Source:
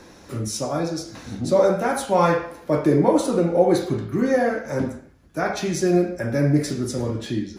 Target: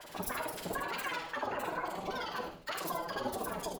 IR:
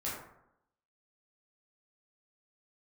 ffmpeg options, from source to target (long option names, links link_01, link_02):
-filter_complex "[0:a]bass=frequency=250:gain=-9,treble=frequency=4000:gain=-2,afreqshift=-18,alimiter=limit=-12.5dB:level=0:latency=1:release=140,asplit=3[link_01][link_02][link_03];[link_02]asetrate=22050,aresample=44100,atempo=2,volume=-9dB[link_04];[link_03]asetrate=66075,aresample=44100,atempo=0.66742,volume=-3dB[link_05];[link_01][link_04][link_05]amix=inputs=3:normalize=0,acompressor=threshold=-31dB:ratio=6,acrossover=split=750[link_06][link_07];[link_06]aeval=exprs='val(0)*(1-1/2+1/2*cos(2*PI*9.8*n/s))':channel_layout=same[link_08];[link_07]aeval=exprs='val(0)*(1-1/2-1/2*cos(2*PI*9.8*n/s))':channel_layout=same[link_09];[link_08][link_09]amix=inputs=2:normalize=0,asplit=5[link_10][link_11][link_12][link_13][link_14];[link_11]adelay=151,afreqshift=-81,volume=-8dB[link_15];[link_12]adelay=302,afreqshift=-162,volume=-17.9dB[link_16];[link_13]adelay=453,afreqshift=-243,volume=-27.8dB[link_17];[link_14]adelay=604,afreqshift=-324,volume=-37.7dB[link_18];[link_10][link_15][link_16][link_17][link_18]amix=inputs=5:normalize=0,asplit=2[link_19][link_20];[1:a]atrim=start_sample=2205,asetrate=70560,aresample=44100,adelay=10[link_21];[link_20][link_21]afir=irnorm=-1:irlink=0,volume=-7.5dB[link_22];[link_19][link_22]amix=inputs=2:normalize=0,asetrate=88200,aresample=44100"